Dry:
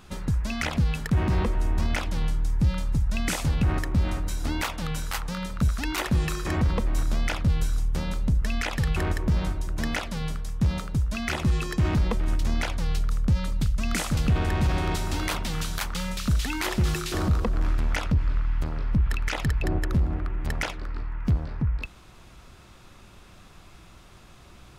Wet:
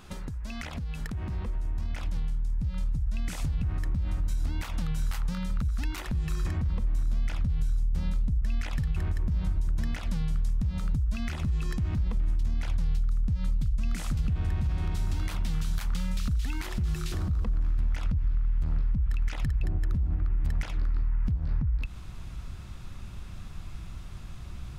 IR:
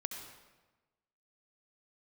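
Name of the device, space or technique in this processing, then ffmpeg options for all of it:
serial compression, peaks first: -af "acompressor=threshold=-29dB:ratio=6,acompressor=threshold=-35dB:ratio=6,asubboost=boost=4:cutoff=190"

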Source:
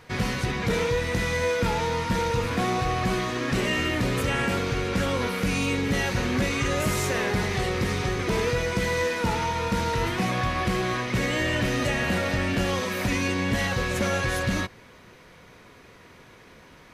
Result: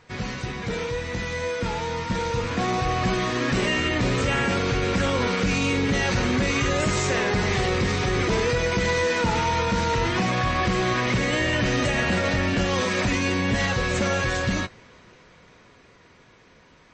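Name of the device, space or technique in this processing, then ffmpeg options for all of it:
low-bitrate web radio: -af "dynaudnorm=framelen=310:gausssize=21:maxgain=11dB,alimiter=limit=-11dB:level=0:latency=1:release=37,volume=-3.5dB" -ar 24000 -c:a libmp3lame -b:a 32k

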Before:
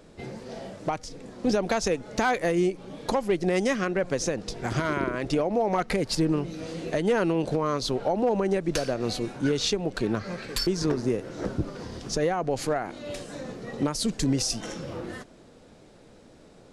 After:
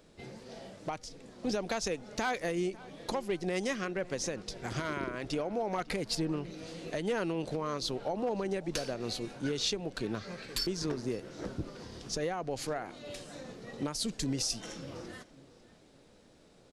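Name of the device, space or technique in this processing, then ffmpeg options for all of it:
presence and air boost: -filter_complex "[0:a]asettb=1/sr,asplit=3[link_01][link_02][link_03];[link_01]atrim=end=6.184[link_04];[link_02]atrim=start=6.18:end=6.58,asetpts=PTS-STARTPTS,afade=type=in:duration=0.004:curve=qsin,afade=type=out:start_time=0.396:duration=0.004:curve=qsin,highshelf=frequency=9100:gain=-8.5[link_05];[link_03]atrim=start=6.576[link_06];[link_04][link_05]acrossfade=duration=0.004:curve1=hsin:curve2=qsin[link_07];[link_07][link_06]acrossfade=duration=0.004:curve1=qsin:curve2=hsin,equalizer=frequency=3800:width_type=o:width=1.8:gain=4.5,highshelf=frequency=11000:gain=7,asplit=2[link_08][link_09];[link_09]adelay=549,lowpass=frequency=2700:poles=1,volume=-19.5dB,asplit=2[link_10][link_11];[link_11]adelay=549,lowpass=frequency=2700:poles=1,volume=0.4,asplit=2[link_12][link_13];[link_13]adelay=549,lowpass=frequency=2700:poles=1,volume=0.4[link_14];[link_08][link_10][link_12][link_14]amix=inputs=4:normalize=0,volume=-9dB"

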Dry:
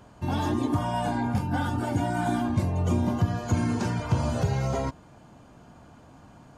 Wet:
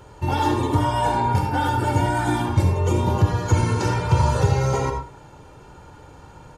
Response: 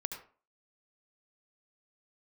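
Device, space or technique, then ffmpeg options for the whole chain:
microphone above a desk: -filter_complex "[0:a]aecho=1:1:2.2:0.7[link_01];[1:a]atrim=start_sample=2205[link_02];[link_01][link_02]afir=irnorm=-1:irlink=0,volume=6dB"

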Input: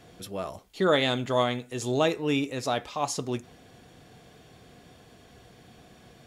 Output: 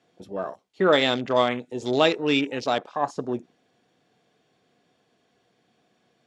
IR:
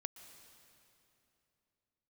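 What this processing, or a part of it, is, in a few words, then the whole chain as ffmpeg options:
over-cleaned archive recording: -filter_complex "[0:a]asettb=1/sr,asplit=3[link_01][link_02][link_03];[link_01]atrim=end=1.514[link_04];[link_02]atrim=start=1.51:end=2.64,asetpts=PTS-STARTPTS,afade=type=in:duration=0.004:curve=qsin,afade=type=out:start_time=1.126:duration=0.004:curve=qsin,equalizer=frequency=5500:width_type=o:width=2.8:gain=5[link_05];[link_03]atrim=start=2.636[link_06];[link_04][link_05]acrossfade=duration=0.004:curve1=hsin:curve2=qsin[link_07];[link_07][link_06]acrossfade=duration=0.004:curve1=qsin:curve2=hsin,highpass=190,lowpass=7200,afwtdn=0.0141,volume=4dB"

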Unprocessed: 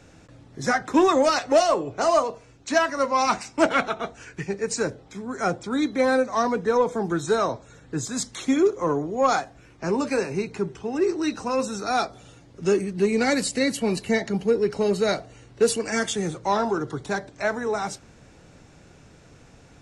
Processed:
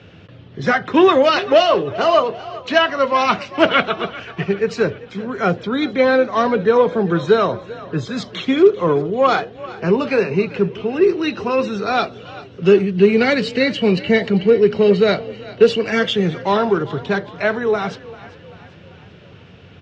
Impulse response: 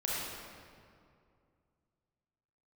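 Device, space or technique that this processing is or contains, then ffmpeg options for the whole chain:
frequency-shifting delay pedal into a guitar cabinet: -filter_complex "[0:a]asplit=5[link_01][link_02][link_03][link_04][link_05];[link_02]adelay=393,afreqshift=31,volume=-18dB[link_06];[link_03]adelay=786,afreqshift=62,volume=-23.7dB[link_07];[link_04]adelay=1179,afreqshift=93,volume=-29.4dB[link_08];[link_05]adelay=1572,afreqshift=124,volume=-35dB[link_09];[link_01][link_06][link_07][link_08][link_09]amix=inputs=5:normalize=0,highpass=93,equalizer=frequency=94:width_type=q:width=4:gain=10,equalizer=frequency=180:width_type=q:width=4:gain=5,equalizer=frequency=290:width_type=q:width=4:gain=-5,equalizer=frequency=410:width_type=q:width=4:gain=4,equalizer=frequency=840:width_type=q:width=4:gain=-5,equalizer=frequency=3000:width_type=q:width=4:gain=10,lowpass=frequency=4100:width=0.5412,lowpass=frequency=4100:width=1.3066,volume=6.5dB"

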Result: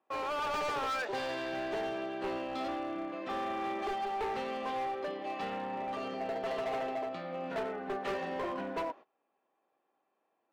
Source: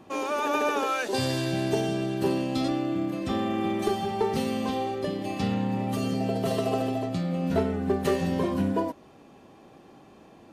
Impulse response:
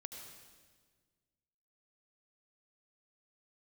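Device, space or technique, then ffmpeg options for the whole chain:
walkie-talkie: -af "highpass=590,lowpass=2200,asoftclip=type=hard:threshold=-31.5dB,agate=range=-22dB:threshold=-49dB:ratio=16:detection=peak"

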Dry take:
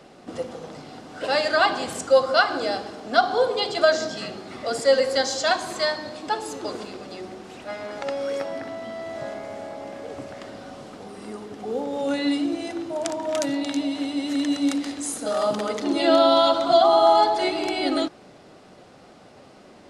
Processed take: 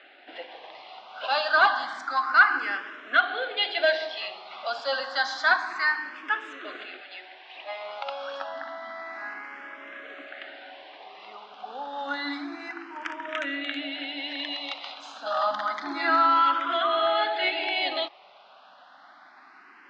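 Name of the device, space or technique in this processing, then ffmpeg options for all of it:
barber-pole phaser into a guitar amplifier: -filter_complex "[0:a]highpass=960,asplit=2[link_01][link_02];[link_02]afreqshift=0.29[link_03];[link_01][link_03]amix=inputs=2:normalize=1,asoftclip=type=tanh:threshold=-18dB,highpass=93,equalizer=frequency=150:width_type=q:width=4:gain=-5,equalizer=frequency=280:width_type=q:width=4:gain=6,equalizer=frequency=480:width_type=q:width=4:gain=-10,equalizer=frequency=1600:width_type=q:width=4:gain=4,lowpass=frequency=3500:width=0.5412,lowpass=frequency=3500:width=1.3066,asettb=1/sr,asplit=3[link_04][link_05][link_06];[link_04]atrim=end=7.004[link_07];[link_05]atrim=start=7:end=7.56,asetpts=PTS-STARTPTS,afade=type=in:duration=0.004:curve=qsin,afade=type=out:start_time=0.556:duration=0.004:curve=qsin,equalizer=frequency=320:width_type=o:width=1.8:gain=-9.5[link_08];[link_06]atrim=start=7.556[link_09];[link_07][link_08]acrossfade=duration=0.004:curve1=hsin:curve2=qsin[link_10];[link_10][link_09]acrossfade=duration=0.004:curve1=qsin:curve2=hsin,volume=6.5dB"

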